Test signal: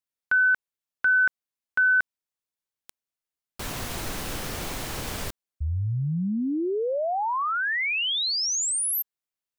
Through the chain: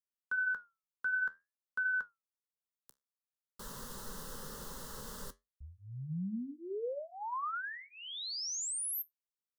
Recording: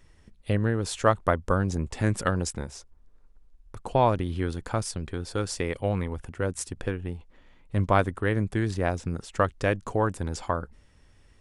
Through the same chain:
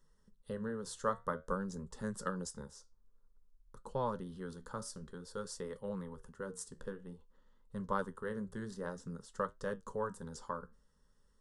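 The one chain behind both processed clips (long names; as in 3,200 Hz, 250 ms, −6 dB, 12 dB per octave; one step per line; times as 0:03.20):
phaser with its sweep stopped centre 470 Hz, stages 8
flanger 0.52 Hz, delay 8.3 ms, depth 7 ms, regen −69%
level −6 dB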